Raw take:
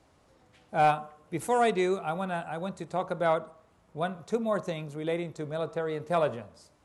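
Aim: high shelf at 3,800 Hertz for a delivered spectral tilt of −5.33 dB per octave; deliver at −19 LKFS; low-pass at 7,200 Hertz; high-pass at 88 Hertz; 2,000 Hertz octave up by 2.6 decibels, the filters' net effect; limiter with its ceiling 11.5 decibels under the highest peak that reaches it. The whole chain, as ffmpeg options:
ffmpeg -i in.wav -af "highpass=88,lowpass=7200,equalizer=frequency=2000:width_type=o:gain=5,highshelf=frequency=3800:gain=-5.5,volume=16.5dB,alimiter=limit=-7.5dB:level=0:latency=1" out.wav

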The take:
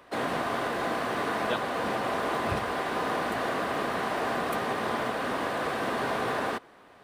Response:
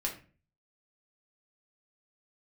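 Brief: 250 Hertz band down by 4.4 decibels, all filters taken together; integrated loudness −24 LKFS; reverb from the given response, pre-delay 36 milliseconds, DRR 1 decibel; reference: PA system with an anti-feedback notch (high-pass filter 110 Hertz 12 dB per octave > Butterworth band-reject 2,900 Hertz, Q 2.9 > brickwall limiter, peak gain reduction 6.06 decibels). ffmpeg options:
-filter_complex "[0:a]equalizer=frequency=250:width_type=o:gain=-5.5,asplit=2[link_01][link_02];[1:a]atrim=start_sample=2205,adelay=36[link_03];[link_02][link_03]afir=irnorm=-1:irlink=0,volume=-4dB[link_04];[link_01][link_04]amix=inputs=2:normalize=0,highpass=110,asuperstop=centerf=2900:order=8:qfactor=2.9,volume=5.5dB,alimiter=limit=-15dB:level=0:latency=1"

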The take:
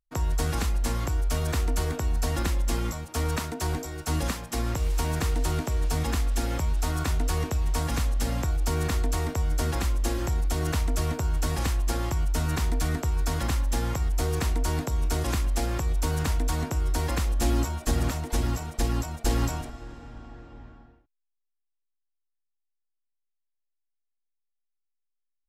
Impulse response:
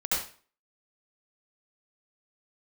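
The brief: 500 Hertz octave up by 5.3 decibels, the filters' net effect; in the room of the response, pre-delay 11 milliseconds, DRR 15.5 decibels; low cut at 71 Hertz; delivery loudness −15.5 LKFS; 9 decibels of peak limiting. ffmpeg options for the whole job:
-filter_complex "[0:a]highpass=71,equalizer=frequency=500:width_type=o:gain=6.5,alimiter=limit=-20.5dB:level=0:latency=1,asplit=2[link_01][link_02];[1:a]atrim=start_sample=2205,adelay=11[link_03];[link_02][link_03]afir=irnorm=-1:irlink=0,volume=-24.5dB[link_04];[link_01][link_04]amix=inputs=2:normalize=0,volume=15.5dB"

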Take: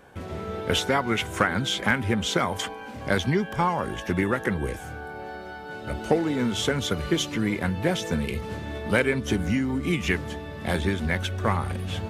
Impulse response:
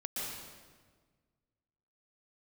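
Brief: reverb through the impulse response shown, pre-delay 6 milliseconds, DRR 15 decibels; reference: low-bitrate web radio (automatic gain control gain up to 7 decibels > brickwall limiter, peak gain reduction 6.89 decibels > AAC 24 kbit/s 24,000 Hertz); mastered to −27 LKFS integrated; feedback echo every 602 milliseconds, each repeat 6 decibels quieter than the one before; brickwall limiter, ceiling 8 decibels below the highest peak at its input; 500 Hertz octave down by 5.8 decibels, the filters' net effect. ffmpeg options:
-filter_complex "[0:a]equalizer=frequency=500:width_type=o:gain=-7.5,alimiter=limit=-17dB:level=0:latency=1,aecho=1:1:602|1204|1806|2408|3010|3612:0.501|0.251|0.125|0.0626|0.0313|0.0157,asplit=2[link_01][link_02];[1:a]atrim=start_sample=2205,adelay=6[link_03];[link_02][link_03]afir=irnorm=-1:irlink=0,volume=-17.5dB[link_04];[link_01][link_04]amix=inputs=2:normalize=0,dynaudnorm=maxgain=7dB,alimiter=limit=-20dB:level=0:latency=1,volume=2dB" -ar 24000 -c:a aac -b:a 24k

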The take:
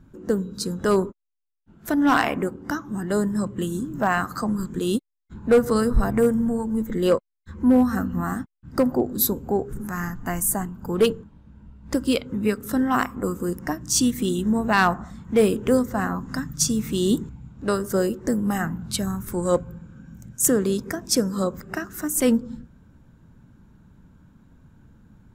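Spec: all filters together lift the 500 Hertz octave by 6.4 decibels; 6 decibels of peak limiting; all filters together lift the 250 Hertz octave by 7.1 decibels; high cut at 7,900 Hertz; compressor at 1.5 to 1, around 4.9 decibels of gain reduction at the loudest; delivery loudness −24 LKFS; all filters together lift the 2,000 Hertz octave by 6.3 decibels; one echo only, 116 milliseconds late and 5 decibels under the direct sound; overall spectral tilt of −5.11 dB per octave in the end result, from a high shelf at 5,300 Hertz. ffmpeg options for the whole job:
ffmpeg -i in.wav -af "lowpass=7900,equalizer=frequency=250:width_type=o:gain=7,equalizer=frequency=500:width_type=o:gain=5,equalizer=frequency=2000:width_type=o:gain=7.5,highshelf=frequency=5300:gain=5,acompressor=threshold=-19dB:ratio=1.5,alimiter=limit=-11.5dB:level=0:latency=1,aecho=1:1:116:0.562,volume=-2.5dB" out.wav

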